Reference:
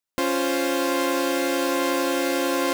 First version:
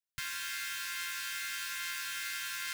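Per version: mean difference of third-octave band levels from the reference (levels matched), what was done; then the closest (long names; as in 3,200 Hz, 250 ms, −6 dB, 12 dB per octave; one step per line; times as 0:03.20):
14.5 dB: elliptic band-stop filter 140–1,500 Hz, stop band 50 dB
level −7.5 dB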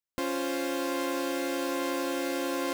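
1.0 dB: low-shelf EQ 210 Hz +5 dB
level −8.5 dB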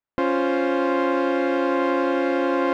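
9.0 dB: low-pass filter 1,800 Hz 12 dB per octave
level +2.5 dB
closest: second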